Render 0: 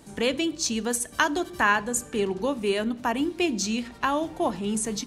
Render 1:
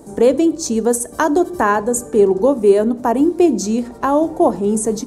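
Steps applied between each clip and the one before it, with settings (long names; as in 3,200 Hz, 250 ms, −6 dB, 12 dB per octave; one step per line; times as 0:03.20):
drawn EQ curve 160 Hz 0 dB, 430 Hz +9 dB, 790 Hz +4 dB, 2,900 Hz −15 dB, 7,700 Hz 0 dB
level +6.5 dB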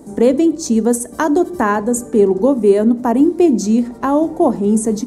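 hollow resonant body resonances 230/2,000 Hz, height 7 dB, ringing for 25 ms
level −1.5 dB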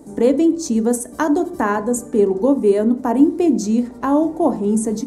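feedback delay network reverb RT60 0.42 s, low-frequency decay 1.05×, high-frequency decay 0.35×, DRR 10.5 dB
level −3.5 dB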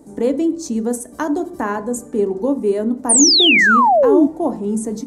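sound drawn into the spectrogram fall, 0:03.09–0:04.27, 260–9,700 Hz −9 dBFS
level −3 dB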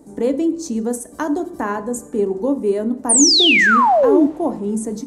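coupled-rooms reverb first 0.67 s, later 2.4 s, from −19 dB, DRR 17 dB
level −1 dB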